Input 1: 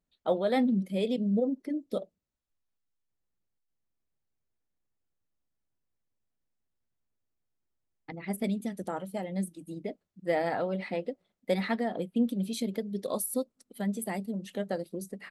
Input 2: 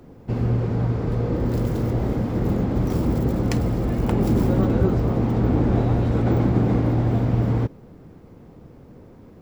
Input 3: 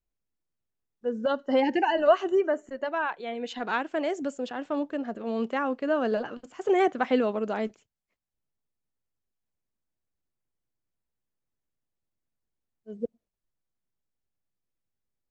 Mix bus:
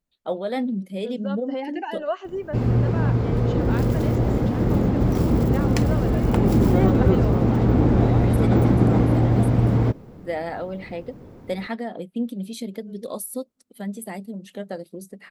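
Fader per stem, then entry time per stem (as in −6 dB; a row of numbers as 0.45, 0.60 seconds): +0.5, +2.0, −6.5 decibels; 0.00, 2.25, 0.00 seconds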